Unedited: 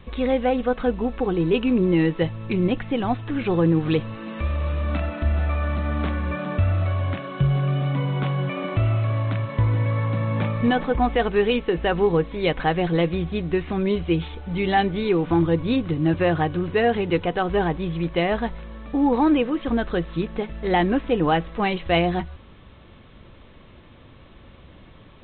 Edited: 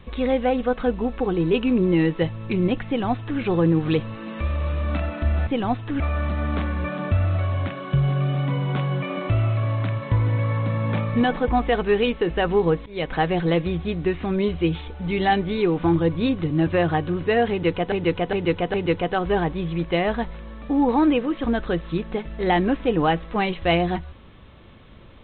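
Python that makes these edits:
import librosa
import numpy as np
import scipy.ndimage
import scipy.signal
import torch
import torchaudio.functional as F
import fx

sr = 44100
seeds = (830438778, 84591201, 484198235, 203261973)

y = fx.edit(x, sr, fx.duplicate(start_s=2.87, length_s=0.53, to_s=5.47),
    fx.fade_in_from(start_s=12.33, length_s=0.3, floor_db=-19.5),
    fx.repeat(start_s=16.98, length_s=0.41, count=4), tone=tone)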